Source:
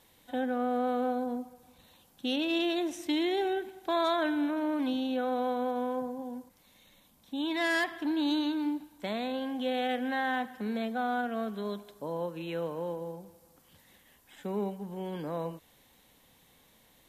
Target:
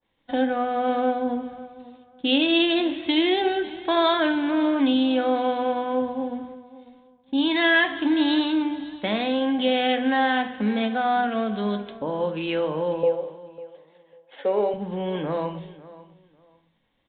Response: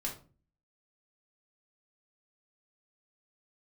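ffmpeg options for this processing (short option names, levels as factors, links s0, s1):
-filter_complex "[0:a]agate=range=0.0224:threshold=0.00355:ratio=3:detection=peak,asettb=1/sr,asplit=3[s0][s1][s2];[s0]atrim=end=13.034[s3];[s1]atrim=start=13.03:end=14.74,asetpts=PTS-STARTPTS,afade=t=in:d=0.004:c=qsin,afade=t=out:st=1.706:d=0.004:c=qsin,highpass=f=510:t=q:w=4.9[s4];[s2]atrim=start=14.736[s5];[s3][s4]acrossfade=d=0.004:c1=hsin:c2=qsin[s6];[s6][s5]acrossfade=d=0.004:c1=qsin:c2=hsin,asplit=2[s7][s8];[s8]acompressor=threshold=0.00631:ratio=6,volume=1.12[s9];[s7][s9]amix=inputs=2:normalize=0,aecho=1:1:548|1096:0.126|0.0277,asplit=2[s10][s11];[1:a]atrim=start_sample=2205[s12];[s11][s12]afir=irnorm=-1:irlink=0,volume=0.631[s13];[s10][s13]amix=inputs=2:normalize=0,aresample=8000,aresample=44100,adynamicequalizer=threshold=0.00794:dfrequency=2300:dqfactor=0.7:tfrequency=2300:tqfactor=0.7:attack=5:release=100:ratio=0.375:range=3:mode=boostabove:tftype=highshelf,volume=1.33"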